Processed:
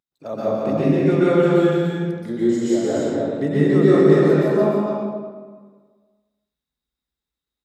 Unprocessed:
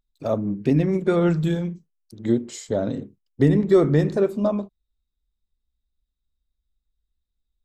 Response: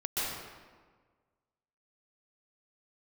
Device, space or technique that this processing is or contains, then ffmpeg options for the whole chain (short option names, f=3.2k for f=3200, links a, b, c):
stadium PA: -filter_complex "[0:a]highpass=170,equalizer=f=1.6k:t=o:w=0.77:g=3,aecho=1:1:177.8|288.6:0.562|0.562[a];[1:a]atrim=start_sample=2205[b];[a][b]afir=irnorm=-1:irlink=0,volume=-4dB"